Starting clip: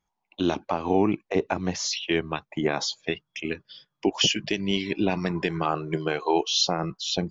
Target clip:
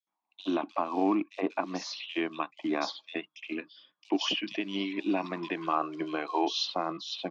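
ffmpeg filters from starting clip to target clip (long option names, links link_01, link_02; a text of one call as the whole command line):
ffmpeg -i in.wav -filter_complex "[0:a]acrusher=bits=6:mode=log:mix=0:aa=0.000001,highpass=frequency=220:width=0.5412,highpass=frequency=220:width=1.3066,equalizer=frequency=300:width_type=q:width=4:gain=8,equalizer=frequency=430:width_type=q:width=4:gain=-6,equalizer=frequency=670:width_type=q:width=4:gain=5,equalizer=frequency=1100:width_type=q:width=4:gain=10,equalizer=frequency=2500:width_type=q:width=4:gain=4,equalizer=frequency=3700:width_type=q:width=4:gain=4,lowpass=frequency=5200:width=0.5412,lowpass=frequency=5200:width=1.3066,acrossover=split=3300[link_01][link_02];[link_01]adelay=70[link_03];[link_03][link_02]amix=inputs=2:normalize=0,volume=-7.5dB" out.wav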